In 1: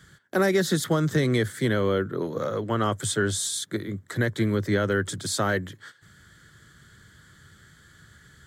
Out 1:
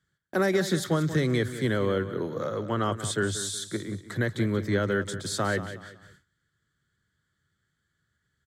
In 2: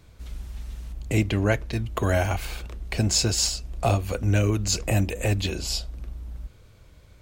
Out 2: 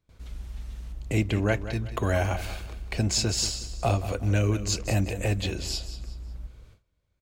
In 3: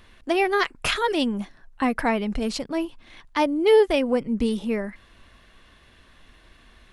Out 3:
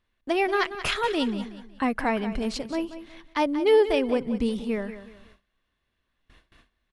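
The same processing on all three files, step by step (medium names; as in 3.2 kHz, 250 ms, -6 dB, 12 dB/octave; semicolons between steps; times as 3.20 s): treble shelf 10 kHz -6 dB; feedback delay 184 ms, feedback 32%, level -12.5 dB; gate with hold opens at -40 dBFS; trim -2.5 dB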